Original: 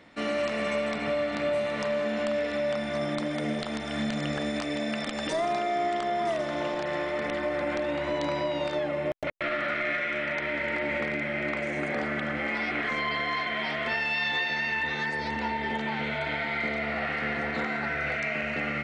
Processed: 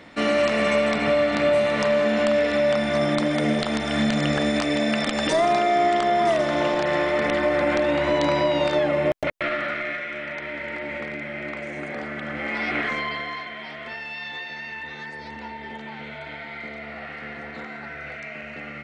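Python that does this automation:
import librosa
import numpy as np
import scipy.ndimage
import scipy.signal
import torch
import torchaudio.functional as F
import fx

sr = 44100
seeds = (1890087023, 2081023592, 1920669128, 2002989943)

y = fx.gain(x, sr, db=fx.line((9.1, 8.0), (10.06, -2.0), (12.16, -2.0), (12.77, 5.0), (13.57, -6.0)))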